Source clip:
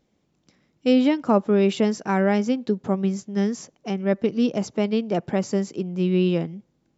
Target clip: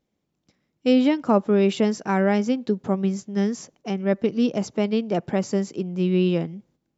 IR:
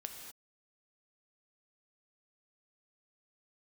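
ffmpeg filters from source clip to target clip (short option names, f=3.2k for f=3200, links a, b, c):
-af "agate=range=-8dB:threshold=-57dB:ratio=16:detection=peak"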